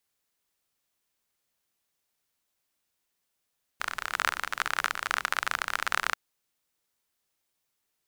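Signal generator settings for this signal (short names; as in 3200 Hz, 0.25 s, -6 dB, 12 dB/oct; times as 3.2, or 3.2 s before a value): rain from filtered ticks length 2.34 s, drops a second 37, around 1400 Hz, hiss -22 dB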